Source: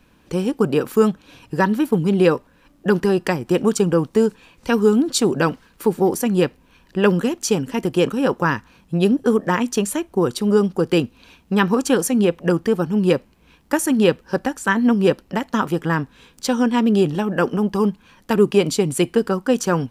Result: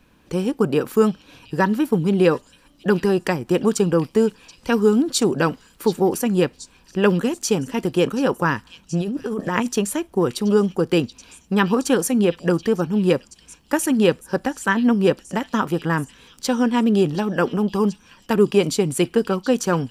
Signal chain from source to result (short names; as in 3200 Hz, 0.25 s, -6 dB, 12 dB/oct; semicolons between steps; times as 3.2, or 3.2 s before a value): 9.01–9.68 negative-ratio compressor -22 dBFS, ratio -1; on a send: delay with a stepping band-pass 0.729 s, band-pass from 3900 Hz, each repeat 0.7 oct, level -11.5 dB; on the sum: gain -1 dB